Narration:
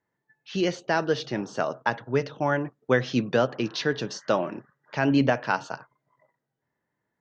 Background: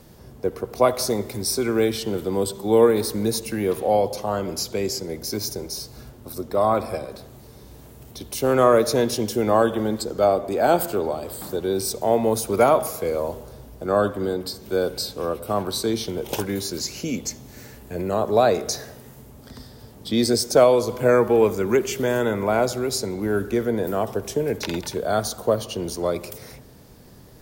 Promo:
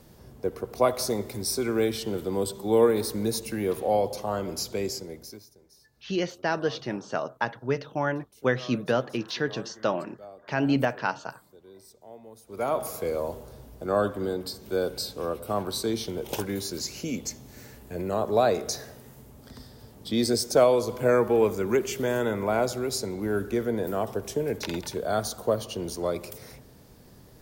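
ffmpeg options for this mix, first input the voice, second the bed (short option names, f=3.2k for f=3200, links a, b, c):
-filter_complex "[0:a]adelay=5550,volume=-2.5dB[a];[1:a]volume=18dB,afade=t=out:st=4.82:d=0.64:silence=0.0749894,afade=t=in:st=12.46:d=0.5:silence=0.0749894[b];[a][b]amix=inputs=2:normalize=0"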